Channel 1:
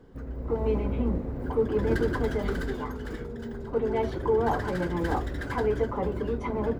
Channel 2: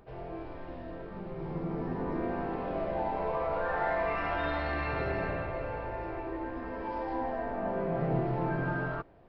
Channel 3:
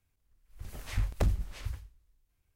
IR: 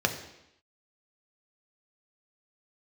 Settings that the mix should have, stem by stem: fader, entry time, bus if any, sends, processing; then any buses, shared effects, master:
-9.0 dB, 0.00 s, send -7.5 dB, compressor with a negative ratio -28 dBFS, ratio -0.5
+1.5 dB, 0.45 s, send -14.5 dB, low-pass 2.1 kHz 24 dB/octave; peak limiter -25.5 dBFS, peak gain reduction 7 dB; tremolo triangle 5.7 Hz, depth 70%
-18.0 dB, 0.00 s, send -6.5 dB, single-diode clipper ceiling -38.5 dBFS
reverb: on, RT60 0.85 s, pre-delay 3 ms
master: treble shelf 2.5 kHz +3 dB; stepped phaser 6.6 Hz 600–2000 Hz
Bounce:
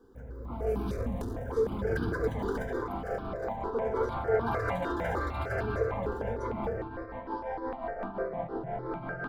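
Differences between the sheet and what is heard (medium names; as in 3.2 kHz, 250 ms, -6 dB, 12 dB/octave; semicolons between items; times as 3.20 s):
stem 1: missing compressor with a negative ratio -28 dBFS, ratio -0.5; stem 2: missing low-pass 2.1 kHz 24 dB/octave; stem 3 -18.0 dB -> -9.5 dB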